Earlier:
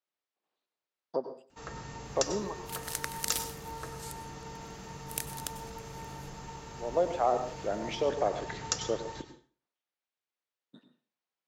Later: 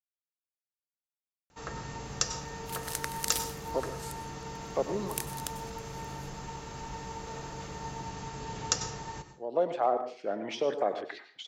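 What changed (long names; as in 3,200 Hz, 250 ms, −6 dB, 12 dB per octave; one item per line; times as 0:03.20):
speech: entry +2.60 s
first sound +3.0 dB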